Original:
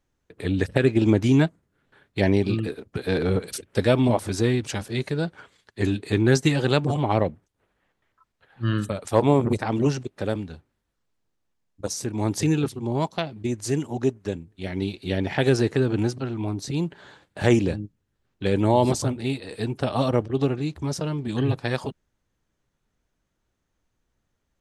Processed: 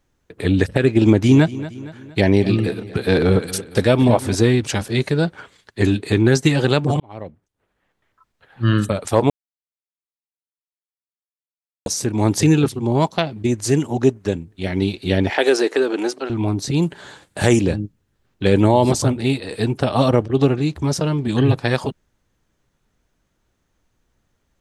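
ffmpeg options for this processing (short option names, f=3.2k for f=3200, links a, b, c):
-filter_complex "[0:a]asettb=1/sr,asplit=3[a][b][c];[a]atrim=end=1.044[d];[b]atrim=start=1.04:end=4.35,asetpts=PTS-STARTPTS,afade=t=in:d=0.004:c=qsin,afade=t=out:st=3.306:d=0.004:c=qsin,aecho=1:1:232|464|696|928:0.141|0.0664|0.0312|0.0147,atrim=end_sample=145971[e];[c]atrim=start=4.346[f];[d][e]acrossfade=d=0.004:c1=hsin:c2=qsin[g];[g][f]acrossfade=d=0.004:c1=qsin:c2=hsin,asettb=1/sr,asplit=3[h][i][j];[h]atrim=end=15.304[k];[i]atrim=start=15.3:end=16.3,asetpts=PTS-STARTPTS,afade=t=in:d=0.004:c=qsin,afade=t=out:st=0.996:d=0.004:c=qsin,highpass=f=340:w=0.5412,highpass=f=340:w=1.3066[l];[j]atrim=start=16.296[m];[k][l]acrossfade=d=0.004:c1=hsin:c2=qsin[n];[n][m]acrossfade=d=0.004:c1=qsin:c2=hsin,asettb=1/sr,asplit=3[o][p][q];[o]atrim=end=16.824[r];[p]atrim=start=16.82:end=17.61,asetpts=PTS-STARTPTS,afade=t=in:d=0.004:c=qsin,afade=t=out:st=0.786:d=0.004:c=qsin,equalizer=f=9.2k:t=o:w=1.2:g=11[s];[q]atrim=start=17.606[t];[r][s]acrossfade=d=0.004:c1=hsin:c2=qsin[u];[u][t]acrossfade=d=0.004:c1=qsin:c2=hsin,asplit=4[v][w][x][y];[v]atrim=end=7,asetpts=PTS-STARTPTS,afade=t=out:st=6.996:d=0.004:c=hsin[z];[w]atrim=start=7:end=9.3,asetpts=PTS-STARTPTS,afade=t=in:d=1.7,afade=t=out:st=2.296:d=0.004:c=hsin[aa];[x]atrim=start=9.3:end=11.86,asetpts=PTS-STARTPTS,volume=0[ab];[y]atrim=start=11.86,asetpts=PTS-STARTPTS,afade=t=in:d=0.004:c=hsin[ac];[z][aa][ab][ac]concat=n=4:v=0:a=1,alimiter=limit=-10dB:level=0:latency=1:release=295,volume=7.5dB"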